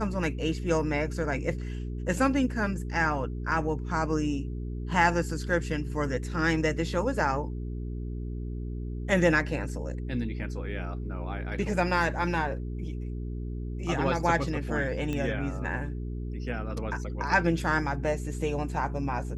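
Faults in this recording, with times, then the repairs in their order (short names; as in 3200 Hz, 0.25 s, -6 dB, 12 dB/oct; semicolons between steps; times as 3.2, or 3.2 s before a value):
hum 60 Hz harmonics 7 -34 dBFS
15.13 pop -20 dBFS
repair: de-click; de-hum 60 Hz, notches 7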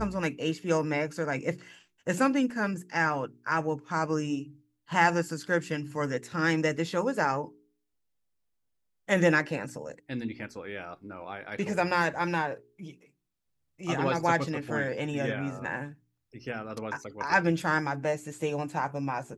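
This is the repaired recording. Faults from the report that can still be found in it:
none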